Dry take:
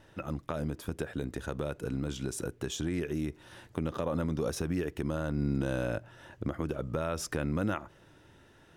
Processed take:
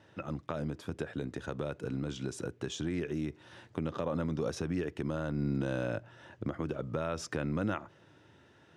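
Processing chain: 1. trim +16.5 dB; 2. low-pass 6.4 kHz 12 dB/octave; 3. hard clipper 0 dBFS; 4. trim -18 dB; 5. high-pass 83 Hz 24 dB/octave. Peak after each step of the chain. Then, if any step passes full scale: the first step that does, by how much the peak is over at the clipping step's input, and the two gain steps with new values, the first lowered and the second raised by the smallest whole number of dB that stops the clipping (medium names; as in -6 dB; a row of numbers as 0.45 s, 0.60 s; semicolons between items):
-2.5 dBFS, -2.5 dBFS, -2.5 dBFS, -20.5 dBFS, -19.0 dBFS; nothing clips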